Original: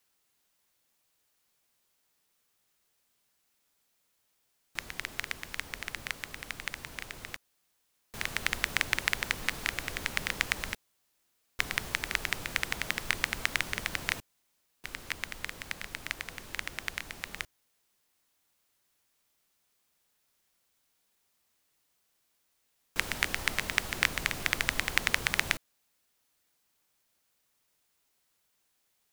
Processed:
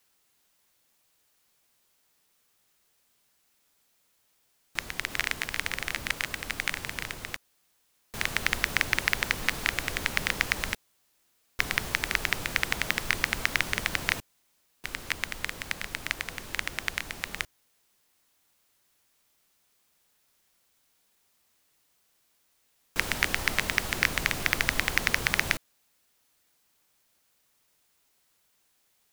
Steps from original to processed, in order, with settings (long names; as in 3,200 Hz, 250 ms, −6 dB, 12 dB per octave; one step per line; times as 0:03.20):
0:04.97–0:07.14: delay that plays each chunk backwards 132 ms, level −2 dB
hard clipping −11 dBFS, distortion −13 dB
level +5 dB